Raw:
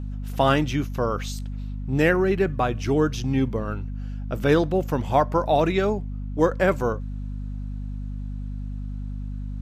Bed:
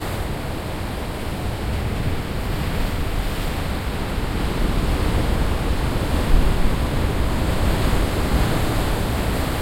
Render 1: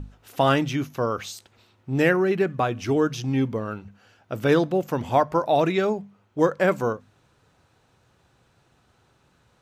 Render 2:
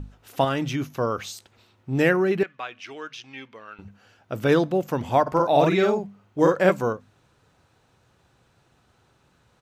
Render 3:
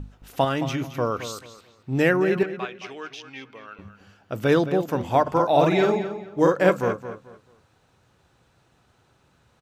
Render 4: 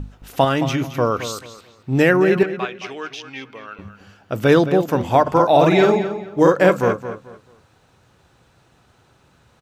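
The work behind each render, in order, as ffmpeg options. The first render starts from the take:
ffmpeg -i in.wav -af "bandreject=frequency=50:width_type=h:width=6,bandreject=frequency=100:width_type=h:width=6,bandreject=frequency=150:width_type=h:width=6,bandreject=frequency=200:width_type=h:width=6,bandreject=frequency=250:width_type=h:width=6" out.wav
ffmpeg -i in.wav -filter_complex "[0:a]asettb=1/sr,asplit=3[link_01][link_02][link_03];[link_01]atrim=end=0.444[link_04];[link_02]atrim=start=0.44:end=0.84,asetpts=PTS-STARTPTS,afade=type=in:duration=0.004:curve=qsin,afade=type=out:start_time=0.396:duration=0.004:curve=qsin,acompressor=threshold=-21dB:ratio=4:attack=3.2:release=140:knee=1:detection=peak[link_05];[link_03]atrim=start=0.836[link_06];[link_04][link_05]acrossfade=duration=0.004:curve1=hsin:curve2=qsin[link_07];[link_07][link_06]acrossfade=duration=0.004:curve1=qsin:curve2=hsin,asettb=1/sr,asplit=3[link_08][link_09][link_10];[link_08]atrim=end=2.434[link_11];[link_09]atrim=start=2.43:end=3.79,asetpts=PTS-STARTPTS,afade=type=in:duration=0.004:curve=qsin,afade=type=out:start_time=1.356:duration=0.004:curve=qsin,bandpass=frequency=2500:width_type=q:width=1.3[link_12];[link_10]atrim=start=3.786[link_13];[link_11][link_12]acrossfade=duration=0.004:curve1=hsin:curve2=qsin[link_14];[link_14][link_13]acrossfade=duration=0.004:curve1=qsin:curve2=hsin,asplit=3[link_15][link_16][link_17];[link_15]afade=type=out:start_time=5.26:duration=0.02[link_18];[link_16]asplit=2[link_19][link_20];[link_20]adelay=49,volume=-2dB[link_21];[link_19][link_21]amix=inputs=2:normalize=0,afade=type=in:start_time=5.26:duration=0.02,afade=type=out:start_time=6.7:duration=0.02[link_22];[link_17]afade=type=in:start_time=6.7:duration=0.02[link_23];[link_18][link_22][link_23]amix=inputs=3:normalize=0" out.wav
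ffmpeg -i in.wav -filter_complex "[0:a]asplit=2[link_01][link_02];[link_02]adelay=219,lowpass=frequency=4900:poles=1,volume=-11dB,asplit=2[link_03][link_04];[link_04]adelay=219,lowpass=frequency=4900:poles=1,volume=0.27,asplit=2[link_05][link_06];[link_06]adelay=219,lowpass=frequency=4900:poles=1,volume=0.27[link_07];[link_01][link_03][link_05][link_07]amix=inputs=4:normalize=0" out.wav
ffmpeg -i in.wav -af "volume=6dB,alimiter=limit=-3dB:level=0:latency=1" out.wav

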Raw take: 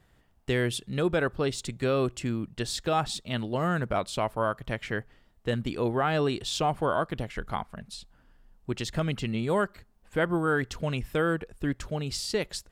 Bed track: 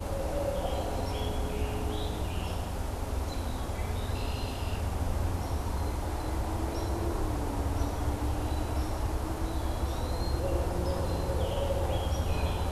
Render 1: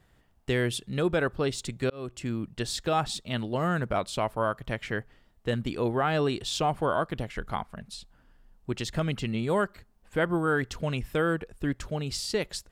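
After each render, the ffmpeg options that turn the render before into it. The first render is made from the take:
ffmpeg -i in.wav -filter_complex "[0:a]asplit=2[link_01][link_02];[link_01]atrim=end=1.9,asetpts=PTS-STARTPTS,afade=type=out:start_time=1.896:duration=0.004:curve=hsin[link_03];[link_02]atrim=start=1.9,asetpts=PTS-STARTPTS,afade=type=in:duration=0.63:curve=qsin[link_04];[link_03][link_04]concat=n=2:v=0:a=1" out.wav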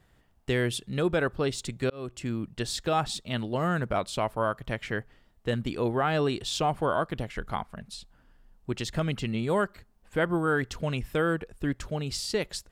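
ffmpeg -i in.wav -af anull out.wav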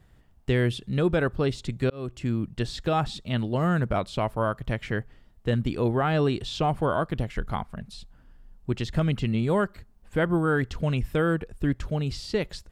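ffmpeg -i in.wav -filter_complex "[0:a]lowshelf=frequency=240:gain=8,acrossover=split=4700[link_01][link_02];[link_02]acompressor=threshold=-49dB:ratio=4:attack=1:release=60[link_03];[link_01][link_03]amix=inputs=2:normalize=0" out.wav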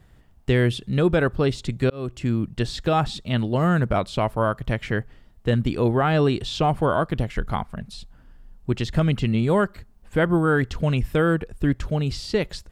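ffmpeg -i in.wav -af "volume=4dB" out.wav

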